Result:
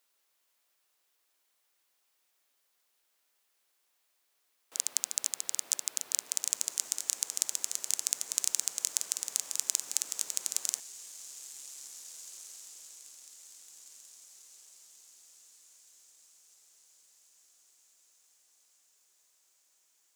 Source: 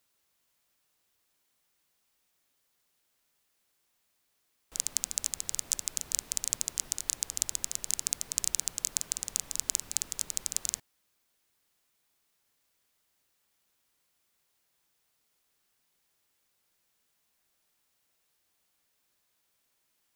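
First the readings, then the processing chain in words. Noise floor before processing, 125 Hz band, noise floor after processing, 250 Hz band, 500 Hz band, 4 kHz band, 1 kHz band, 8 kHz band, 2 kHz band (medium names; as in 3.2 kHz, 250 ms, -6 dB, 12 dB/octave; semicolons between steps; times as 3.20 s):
-76 dBFS, under -15 dB, -76 dBFS, no reading, -1.5 dB, 0.0 dB, 0.0 dB, 0.0 dB, 0.0 dB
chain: high-pass 390 Hz 12 dB/octave; on a send: echo that smears into a reverb 1905 ms, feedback 49%, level -14 dB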